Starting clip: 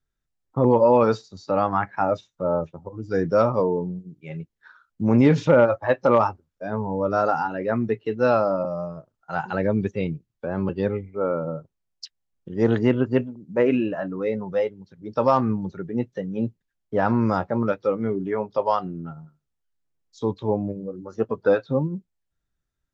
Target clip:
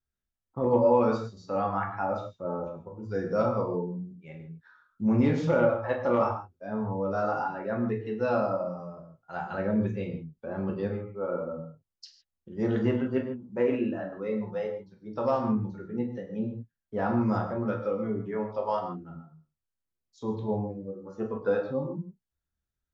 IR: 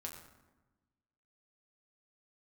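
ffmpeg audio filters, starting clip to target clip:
-filter_complex "[1:a]atrim=start_sample=2205,atrim=end_sample=6615,asetrate=38808,aresample=44100[s0];[0:a][s0]afir=irnorm=-1:irlink=0,volume=0.562"

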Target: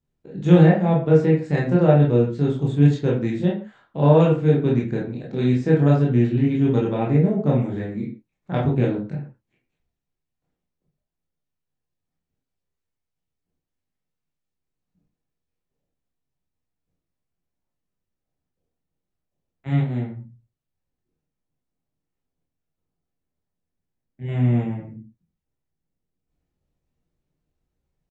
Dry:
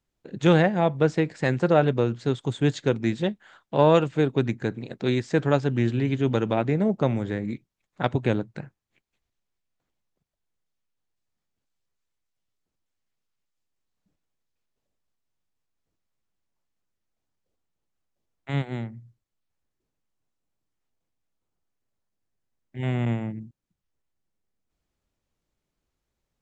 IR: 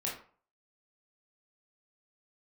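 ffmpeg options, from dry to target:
-filter_complex "[0:a]lowshelf=f=500:g=11,atempo=0.94[s0];[1:a]atrim=start_sample=2205,afade=t=out:st=0.23:d=0.01,atrim=end_sample=10584[s1];[s0][s1]afir=irnorm=-1:irlink=0,volume=0.447"

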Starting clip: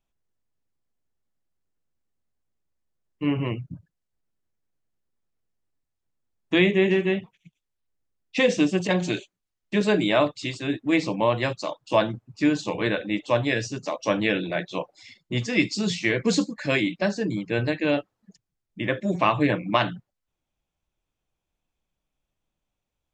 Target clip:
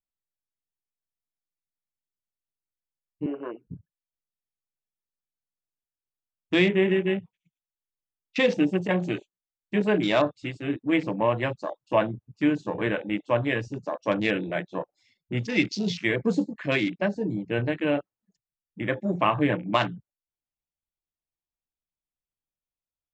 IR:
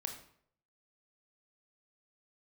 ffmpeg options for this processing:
-filter_complex "[0:a]afwtdn=0.0224,asettb=1/sr,asplit=3[s0][s1][s2];[s0]atrim=end=3.264[s3];[s1]atrim=start=3.26:end=3.67,asetpts=PTS-STARTPTS,afade=t=in:d=0.004:c=qsin,afade=t=out:st=0.406:d=0.004:c=qsin,highpass=f=340:w=0.5412,highpass=f=340:w=1.3066,equalizer=f=870:t=q:w=4:g=-4,equalizer=f=1500:t=q:w=4:g=9,equalizer=f=2200:t=q:w=4:g=-5,lowpass=f=3400:w=0.5412,lowpass=f=3400:w=1.3066[s4];[s2]atrim=start=3.666[s5];[s3][s4]acrossfade=d=0.004:c1=hsin:c2=qsin[s6];[s6][s5]acrossfade=d=0.004:c1=qsin:c2=hsin,volume=0.841"

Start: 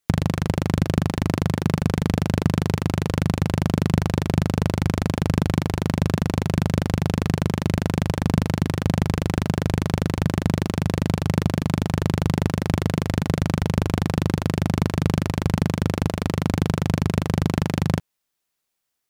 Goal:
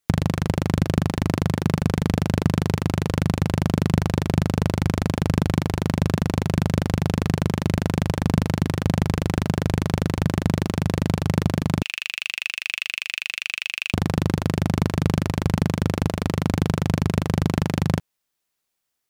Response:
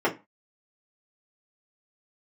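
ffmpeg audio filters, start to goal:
-filter_complex "[0:a]asettb=1/sr,asplit=3[s0][s1][s2];[s0]atrim=end=11.824[s3];[s1]atrim=start=11.82:end=13.94,asetpts=PTS-STARTPTS,afade=t=in:d=0.004:c=qsin,afade=t=out:st=2.116:d=0.004:c=qsin,highpass=f=2600:t=q:w=9.7[s4];[s2]atrim=start=13.936[s5];[s3][s4]acrossfade=d=0.004:c1=hsin:c2=qsin[s6];[s6][s5]acrossfade=d=0.004:c1=qsin:c2=hsin"

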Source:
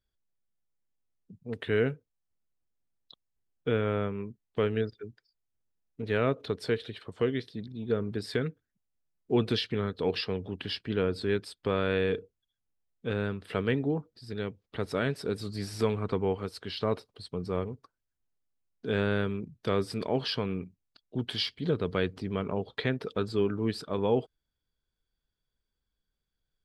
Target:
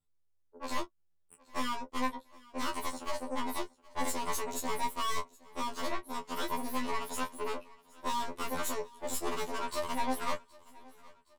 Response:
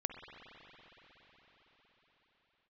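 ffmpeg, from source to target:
-filter_complex "[0:a]aeval=exprs='(tanh(50.1*val(0)+0.8)-tanh(0.8))/50.1':c=same,asplit=2[s0][s1];[s1]aecho=0:1:39|71:0.376|0.168[s2];[s0][s2]amix=inputs=2:normalize=0,asetrate=103194,aresample=44100,asplit=2[s3][s4];[s4]aecho=0:1:769|1538|2307:0.0708|0.0333|0.0156[s5];[s3][s5]amix=inputs=2:normalize=0,afftfilt=real='re*2*eq(mod(b,4),0)':imag='im*2*eq(mod(b,4),0)':win_size=2048:overlap=0.75,volume=1.78"

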